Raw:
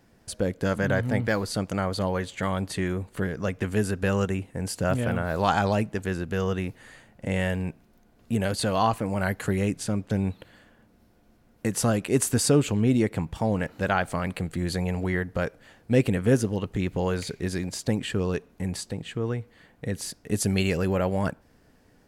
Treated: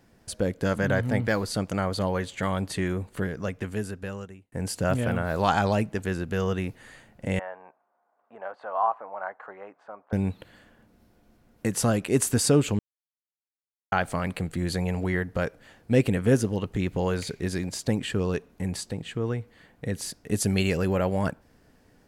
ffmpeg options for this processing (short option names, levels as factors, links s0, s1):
-filter_complex "[0:a]asettb=1/sr,asplit=3[s0][s1][s2];[s0]atrim=end=7.394[s3];[s1]atrim=start=7.39:end=10.13,asetpts=PTS-STARTPTS,afade=t=in:d=0.004:c=qsin,afade=t=out:st=2.736:d=0.004:c=qsin,asuperpass=centerf=930:order=4:qfactor=1.4[s4];[s2]atrim=start=10.126[s5];[s3][s4]acrossfade=d=0.004:c1=hsin:c2=qsin[s6];[s6][s5]acrossfade=d=0.004:c1=qsin:c2=hsin,asplit=4[s7][s8][s9][s10];[s7]atrim=end=4.52,asetpts=PTS-STARTPTS,afade=t=out:st=3.09:d=1.43[s11];[s8]atrim=start=4.52:end=12.79,asetpts=PTS-STARTPTS,afade=t=in:d=0.004:c=hsin,afade=t=out:st=8.266:d=0.004:c=hsin[s12];[s9]atrim=start=12.79:end=13.92,asetpts=PTS-STARTPTS,volume=0[s13];[s10]atrim=start=13.92,asetpts=PTS-STARTPTS,afade=t=in:d=0.004:c=hsin[s14];[s11][s12][s13][s14]concat=n=4:v=0:a=1"